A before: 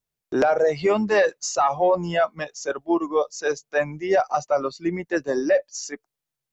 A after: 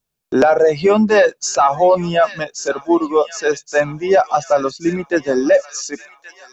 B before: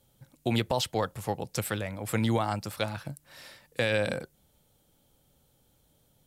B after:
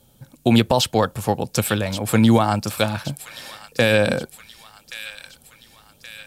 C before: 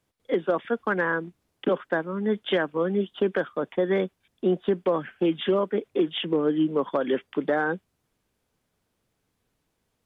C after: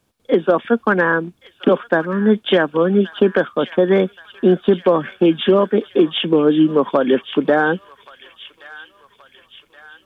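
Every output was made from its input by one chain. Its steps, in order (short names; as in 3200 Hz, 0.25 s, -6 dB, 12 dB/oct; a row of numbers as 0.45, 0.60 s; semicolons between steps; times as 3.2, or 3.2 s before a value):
bell 230 Hz +4.5 dB 0.31 oct; notch 2000 Hz, Q 9; thin delay 1.125 s, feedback 53%, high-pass 2000 Hz, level -10 dB; normalise peaks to -3 dBFS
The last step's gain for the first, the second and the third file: +7.0, +10.0, +9.5 dB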